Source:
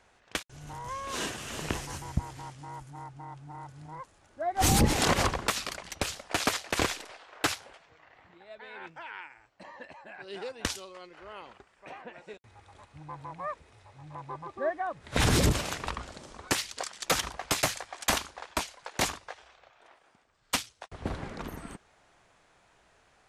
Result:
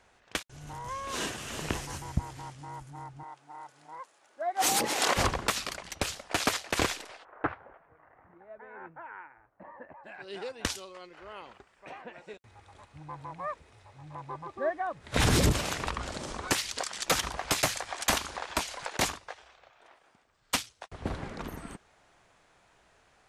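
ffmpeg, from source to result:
ffmpeg -i in.wav -filter_complex "[0:a]asettb=1/sr,asplit=3[link_01][link_02][link_03];[link_01]atrim=end=3.234[link_04];[link_02]atrim=start=3.23:end=5.17,asetpts=PTS-STARTPTS,afade=type=in:duration=0.004:curve=qsin,afade=type=out:start_time=1.936:duration=0.004:curve=qsin,highpass=460[link_05];[link_03]atrim=start=5.166[link_06];[link_04][link_05]acrossfade=duration=0.004:curve1=hsin:curve2=qsin[link_07];[link_07][link_06]acrossfade=duration=0.004:curve1=qsin:curve2=hsin,asplit=3[link_08][link_09][link_10];[link_08]afade=type=out:start_time=7.23:duration=0.02[link_11];[link_09]lowpass=frequency=1600:width=0.5412,lowpass=frequency=1600:width=1.3066,afade=type=in:start_time=7.23:duration=0.02,afade=type=out:start_time=10.03:duration=0.02[link_12];[link_10]afade=type=in:start_time=10.03:duration=0.02[link_13];[link_11][link_12][link_13]amix=inputs=3:normalize=0,asettb=1/sr,asplit=3[link_14][link_15][link_16];[link_14]atrim=end=15.144[link_17];[link_15]atrim=start=15.14:end=18.97,asetpts=PTS-STARTPTS,afade=type=in:duration=0.004:curve=qsin,afade=type=out:start_time=3.826:duration=0.004:curve=qsin,acompressor=mode=upward:threshold=-26dB:ratio=2.5:attack=3.2:release=140:knee=2.83:detection=peak[link_18];[link_16]atrim=start=18.966[link_19];[link_17][link_18]acrossfade=duration=0.004:curve1=hsin:curve2=qsin[link_20];[link_20][link_19]acrossfade=duration=0.004:curve1=qsin:curve2=hsin" out.wav

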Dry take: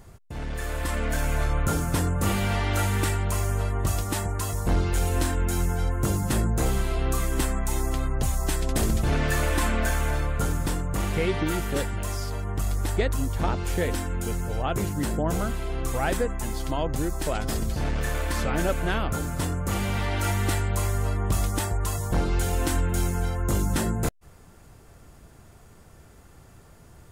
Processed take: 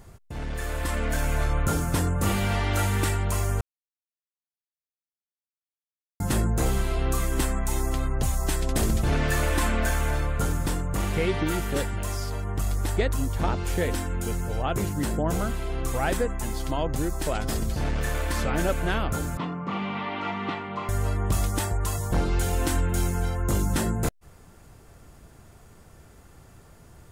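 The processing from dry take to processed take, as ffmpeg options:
ffmpeg -i in.wav -filter_complex "[0:a]asettb=1/sr,asplit=3[link_01][link_02][link_03];[link_01]atrim=end=19.374[link_04];[link_02]atrim=start=19.37:end=20.89,asetpts=PTS-STARTPTS,afade=type=in:duration=0.004:curve=qsin,afade=type=out:start_time=1.516:duration=0.004:curve=qsin,highpass=frequency=170:width=0.5412,highpass=frequency=170:width=1.3066,equalizer=frequency=170:width_type=q:width=4:gain=5,equalizer=frequency=350:width_type=q:width=4:gain=-4,equalizer=frequency=550:width_type=q:width=4:gain=-6,equalizer=frequency=1100:width_type=q:width=4:gain=7,equalizer=frequency=1600:width_type=q:width=4:gain=-8,lowpass=frequency=3300:width=0.5412,lowpass=frequency=3300:width=1.3066[link_05];[link_03]atrim=start=20.886[link_06];[link_04][link_05]acrossfade=duration=0.004:curve1=hsin:curve2=qsin[link_07];[link_07][link_06]acrossfade=duration=0.004:curve1=qsin:curve2=hsin,asplit=3[link_08][link_09][link_10];[link_08]atrim=end=3.61,asetpts=PTS-STARTPTS,afade=type=out:start_time=3.606:duration=0.004:curve=hsin[link_11];[link_09]atrim=start=3.61:end=6.2,asetpts=PTS-STARTPTS,volume=0[link_12];[link_10]atrim=start=6.2,asetpts=PTS-STARTPTS,afade=type=in:duration=0.004:curve=hsin[link_13];[link_11][link_12][link_13]concat=n=3:v=0:a=1" out.wav

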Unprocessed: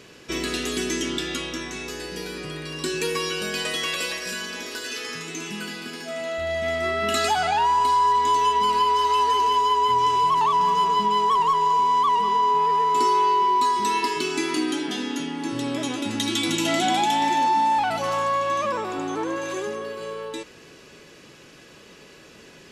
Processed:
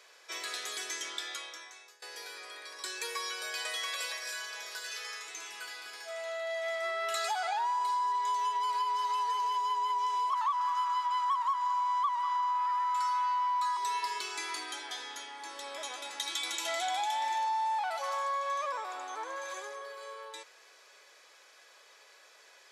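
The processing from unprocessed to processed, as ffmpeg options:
ffmpeg -i in.wav -filter_complex "[0:a]asettb=1/sr,asplit=3[link_01][link_02][link_03];[link_01]atrim=end=10.334[link_04];[link_02]atrim=start=10.33:end=13.77,asetpts=PTS-STARTPTS,afade=type=in:duration=0.004:curve=qsin,afade=type=out:start_time=3.436:duration=0.004:curve=qsin,highpass=frequency=1300:width_type=q:width=4[link_05];[link_03]atrim=start=13.766[link_06];[link_04][link_05]acrossfade=duration=0.004:curve1=hsin:curve2=qsin[link_07];[link_07][link_06]acrossfade=duration=0.004:curve1=qsin:curve2=hsin,asplit=2[link_08][link_09];[link_08]atrim=end=2.02,asetpts=PTS-STARTPTS,afade=type=out:start_time=1.25:duration=0.77:silence=0.0749894[link_10];[link_09]atrim=start=2.02,asetpts=PTS-STARTPTS,afade=type=in:duration=0.004:curve=hsin:silence=0.0749894[link_11];[link_10][link_11]concat=n=2:v=0:a=1,highpass=frequency=610:width=0.5412,highpass=frequency=610:width=1.3066,bandreject=frequency=2800:width=6,acompressor=threshold=-23dB:ratio=3,volume=-7dB" out.wav

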